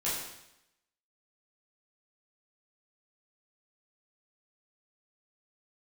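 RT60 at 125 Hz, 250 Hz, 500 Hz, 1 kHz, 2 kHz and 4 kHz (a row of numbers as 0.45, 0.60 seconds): 0.85, 0.85, 0.85, 0.85, 0.85, 0.85 seconds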